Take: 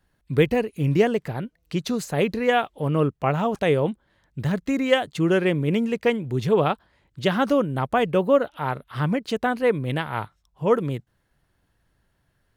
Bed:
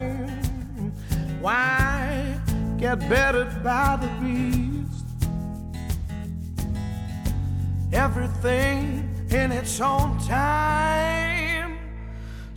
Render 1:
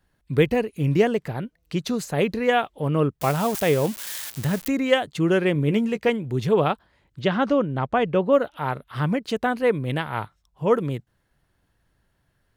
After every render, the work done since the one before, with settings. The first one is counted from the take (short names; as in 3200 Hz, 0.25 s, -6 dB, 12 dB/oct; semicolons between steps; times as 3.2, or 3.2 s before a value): 3.21–4.68 switching spikes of -20.5 dBFS; 5.54–6.09 doubler 14 ms -10 dB; 7.21–8.33 air absorption 110 m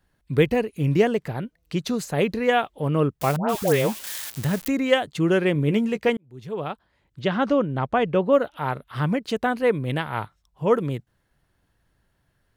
3.36–4.04 dispersion highs, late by 0.13 s, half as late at 1200 Hz; 6.17–7.49 fade in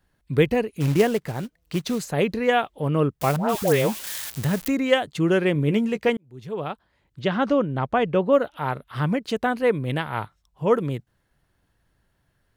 0.8–1.99 short-mantissa float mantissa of 2-bit; 3.22–4.75 G.711 law mismatch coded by mu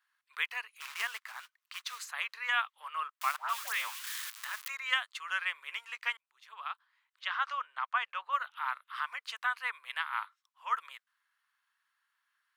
elliptic high-pass 1100 Hz, stop band 80 dB; high shelf 2800 Hz -8.5 dB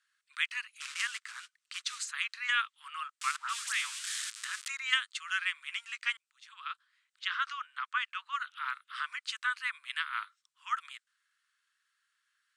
elliptic band-pass 1300–8600 Hz, stop band 60 dB; high shelf 4600 Hz +11 dB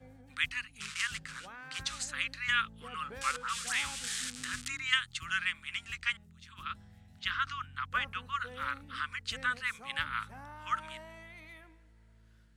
add bed -26.5 dB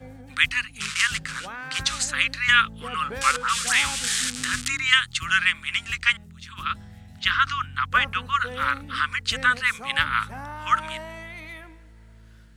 gain +12 dB; limiter -3 dBFS, peak gain reduction 2.5 dB